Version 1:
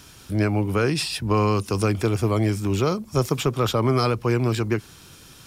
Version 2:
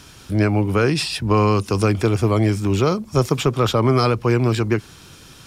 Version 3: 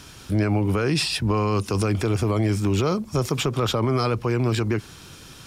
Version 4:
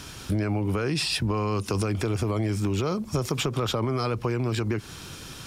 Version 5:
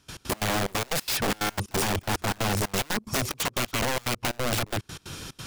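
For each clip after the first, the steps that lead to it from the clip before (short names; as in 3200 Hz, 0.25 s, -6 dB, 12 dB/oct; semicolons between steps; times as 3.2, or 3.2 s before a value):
high shelf 11000 Hz -9.5 dB; gain +4 dB
limiter -13.5 dBFS, peak gain reduction 7 dB
compressor, threshold -26 dBFS, peak gain reduction 9 dB; gain +3 dB
wrapped overs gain 22.5 dB; step gate ".x.x.xxx" 181 bpm -24 dB; gain +2 dB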